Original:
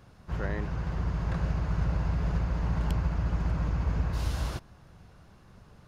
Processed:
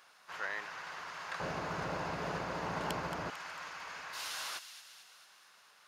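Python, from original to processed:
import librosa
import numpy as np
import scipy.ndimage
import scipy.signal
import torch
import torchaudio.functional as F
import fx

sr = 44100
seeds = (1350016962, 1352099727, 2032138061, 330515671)

y = fx.highpass(x, sr, hz=fx.steps((0.0, 1200.0), (1.4, 380.0), (3.3, 1400.0)), slope=12)
y = fx.echo_wet_highpass(y, sr, ms=224, feedback_pct=58, hz=2400.0, wet_db=-9.5)
y = F.gain(torch.from_numpy(y), 4.0).numpy()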